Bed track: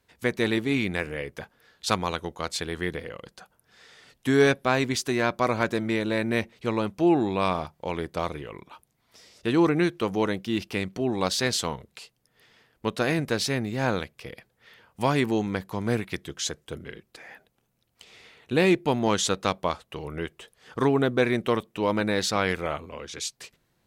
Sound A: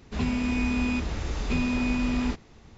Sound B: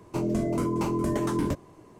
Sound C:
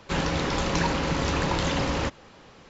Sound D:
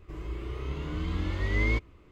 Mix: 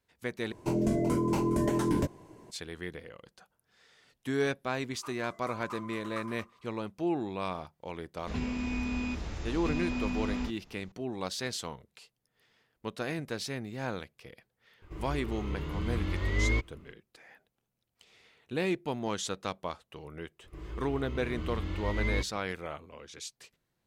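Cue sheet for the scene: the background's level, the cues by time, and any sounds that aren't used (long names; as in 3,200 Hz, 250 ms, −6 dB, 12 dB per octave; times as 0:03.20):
bed track −10 dB
0:00.52: overwrite with B −1 dB + notch filter 1,200 Hz, Q 6.8
0:04.89: mix in B −17 dB + high-pass with resonance 1,200 Hz, resonance Q 11
0:08.15: mix in A −7 dB
0:14.82: mix in D −1.5 dB
0:20.44: mix in D −4.5 dB
not used: C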